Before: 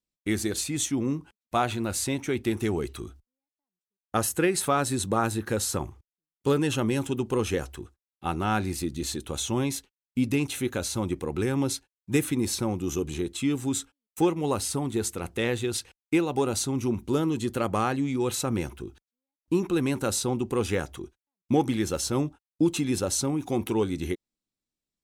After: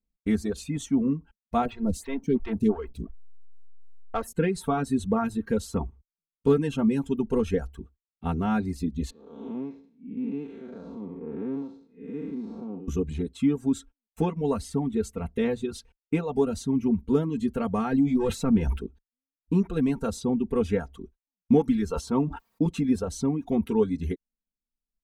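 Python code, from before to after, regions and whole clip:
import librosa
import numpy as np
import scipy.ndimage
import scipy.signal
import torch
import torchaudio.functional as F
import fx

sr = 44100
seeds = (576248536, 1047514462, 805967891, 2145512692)

y = fx.chain(x, sr, fx.leveller(passes=1),
    fx.backlash(play_db=-34.5),
    fx.stagger_phaser(hz=2.9), at=(1.65, 4.36))
y = fx.chain(y, sr, fx.spec_blur(span_ms=269.0),
    fx.highpass(hz=260.0, slope=12),
    fx.spacing_loss(db_at_10k=34), at=(9.1, 12.88))
y = fx.chain(y, sr, fx.leveller(passes=1),
    fx.sustainer(db_per_s=54.0), at=(17.92, 18.86))
y = fx.chain(y, sr, fx.highpass(hz=130.0, slope=6),
    fx.peak_eq(hz=1000.0, db=9.0, octaves=0.61),
    fx.sustainer(db_per_s=69.0), at=(21.9, 22.66))
y = fx.tilt_eq(y, sr, slope=-3.5)
y = fx.dereverb_blind(y, sr, rt60_s=1.0)
y = y + 0.9 * np.pad(y, (int(4.4 * sr / 1000.0), 0))[:len(y)]
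y = y * librosa.db_to_amplitude(-5.0)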